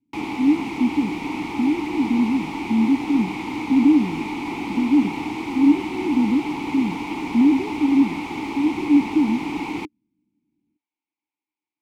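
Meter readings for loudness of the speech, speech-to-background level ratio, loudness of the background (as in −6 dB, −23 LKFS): −21.5 LKFS, 6.5 dB, −28.0 LKFS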